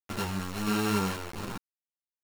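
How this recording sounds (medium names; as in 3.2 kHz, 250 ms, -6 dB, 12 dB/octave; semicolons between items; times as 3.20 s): a buzz of ramps at a fixed pitch in blocks of 32 samples; tremolo saw down 1.5 Hz, depth 55%; a quantiser's noise floor 6-bit, dither none; a shimmering, thickened sound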